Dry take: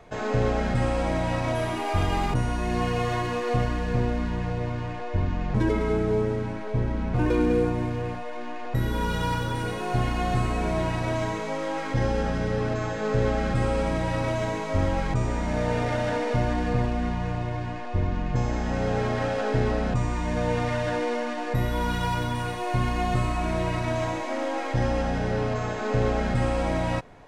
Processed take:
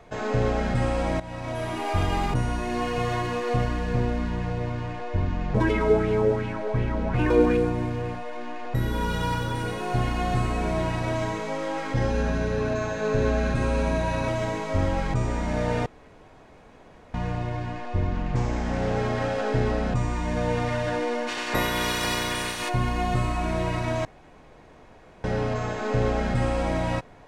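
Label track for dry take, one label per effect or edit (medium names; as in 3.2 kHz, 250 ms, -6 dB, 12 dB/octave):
1.200000	1.860000	fade in, from -14.5 dB
2.580000	2.980000	hum notches 60/120/180 Hz
5.540000	7.570000	sweeping bell 2.7 Hz 470–2900 Hz +11 dB
12.100000	14.280000	rippled EQ curve crests per octave 1.5, crest to trough 8 dB
15.860000	17.140000	room tone
18.130000	18.960000	loudspeaker Doppler distortion depth 0.28 ms
21.270000	22.680000	spectral peaks clipped ceiling under each frame's peak by 23 dB
24.050000	25.240000	room tone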